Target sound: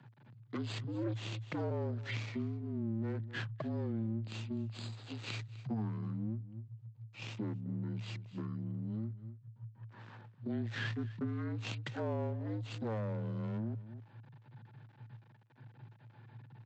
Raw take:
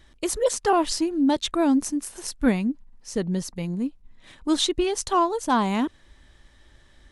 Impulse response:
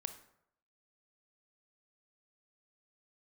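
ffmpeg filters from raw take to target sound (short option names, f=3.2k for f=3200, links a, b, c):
-filter_complex "[0:a]asetrate=18846,aresample=44100,aresample=16000,aeval=exprs='max(val(0),0)':c=same,aresample=44100,bass=f=250:g=3,treble=f=4k:g=-7,asplit=2[a][b];[b]aecho=0:1:252:0.0891[c];[a][c]amix=inputs=2:normalize=0,afreqshift=110,acompressor=threshold=-35dB:ratio=3,volume=-3.5dB"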